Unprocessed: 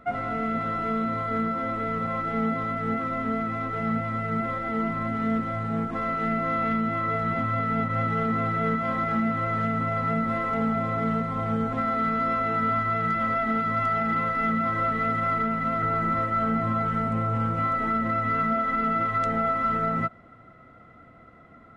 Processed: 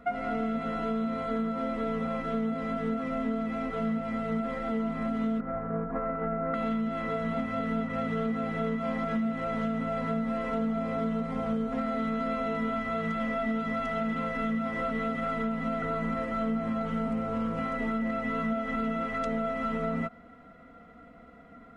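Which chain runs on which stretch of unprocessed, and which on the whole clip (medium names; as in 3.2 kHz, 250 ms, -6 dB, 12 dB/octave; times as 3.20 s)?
5.40–6.54 s: band-stop 230 Hz, Q 5.3 + transient shaper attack +9 dB, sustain -2 dB + low-pass 1.7 kHz 24 dB/octave
whole clip: comb 4.2 ms, depth 96%; compression, threshold -24 dBFS; trim -2.5 dB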